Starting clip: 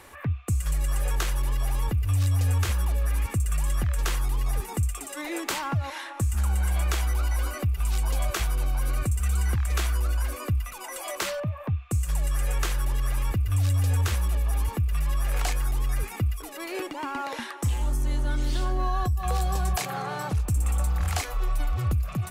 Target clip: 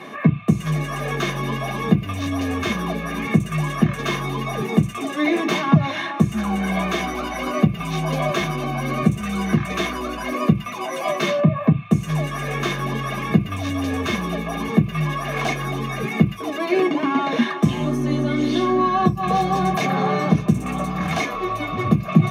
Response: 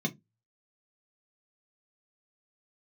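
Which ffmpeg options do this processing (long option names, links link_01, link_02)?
-filter_complex "[0:a]asplit=2[link_01][link_02];[link_02]highpass=frequency=720:poles=1,volume=16dB,asoftclip=type=tanh:threshold=-15.5dB[link_03];[link_01][link_03]amix=inputs=2:normalize=0,lowpass=frequency=1900:poles=1,volume=-6dB[link_04];[1:a]atrim=start_sample=2205[link_05];[link_04][link_05]afir=irnorm=-1:irlink=0,volume=1.5dB"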